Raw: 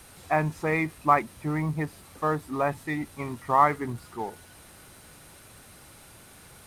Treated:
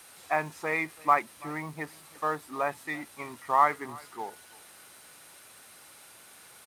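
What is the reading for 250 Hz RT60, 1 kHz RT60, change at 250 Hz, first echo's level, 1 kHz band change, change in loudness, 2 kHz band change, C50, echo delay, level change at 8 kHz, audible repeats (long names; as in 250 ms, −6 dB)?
no reverb audible, no reverb audible, −9.5 dB, −23.0 dB, −2.0 dB, −3.0 dB, −0.5 dB, no reverb audible, 334 ms, 0.0 dB, 1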